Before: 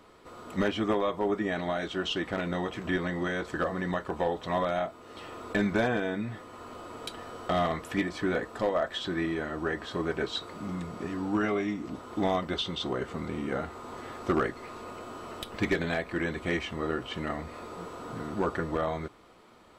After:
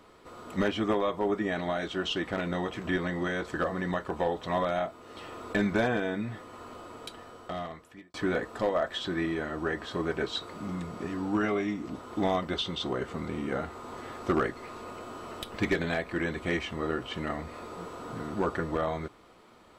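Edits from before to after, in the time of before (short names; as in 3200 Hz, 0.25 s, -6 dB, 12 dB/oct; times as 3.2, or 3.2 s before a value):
6.54–8.14 fade out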